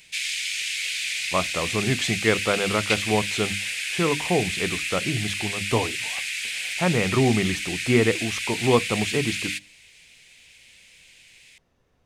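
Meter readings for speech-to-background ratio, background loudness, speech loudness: 1.0 dB, -26.5 LUFS, -25.5 LUFS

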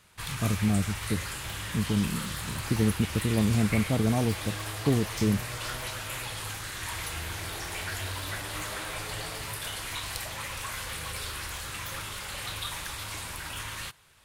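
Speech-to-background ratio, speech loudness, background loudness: 6.0 dB, -28.5 LUFS, -34.5 LUFS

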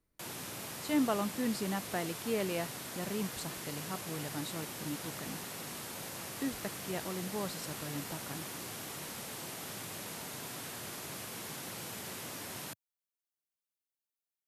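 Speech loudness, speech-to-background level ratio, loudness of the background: -38.5 LUFS, 3.0 dB, -41.5 LUFS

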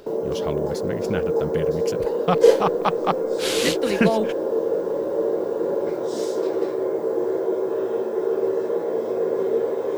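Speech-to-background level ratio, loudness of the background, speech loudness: -3.0 dB, -23.5 LUFS, -26.5 LUFS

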